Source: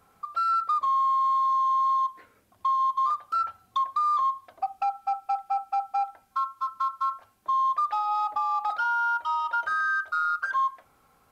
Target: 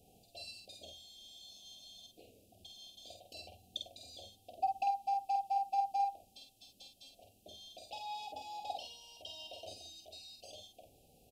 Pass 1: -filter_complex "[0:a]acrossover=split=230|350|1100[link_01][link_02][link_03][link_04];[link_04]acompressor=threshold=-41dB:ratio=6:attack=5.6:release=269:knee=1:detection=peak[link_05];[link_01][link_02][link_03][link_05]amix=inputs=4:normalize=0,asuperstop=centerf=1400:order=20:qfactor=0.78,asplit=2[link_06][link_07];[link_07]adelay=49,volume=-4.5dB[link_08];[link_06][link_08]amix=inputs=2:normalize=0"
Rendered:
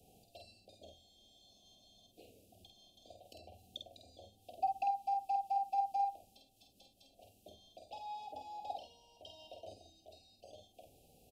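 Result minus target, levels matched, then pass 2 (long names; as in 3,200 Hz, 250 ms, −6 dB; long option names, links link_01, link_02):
downward compressor: peak gain reduction +14.5 dB
-filter_complex "[0:a]asuperstop=centerf=1400:order=20:qfactor=0.78,asplit=2[link_01][link_02];[link_02]adelay=49,volume=-4.5dB[link_03];[link_01][link_03]amix=inputs=2:normalize=0"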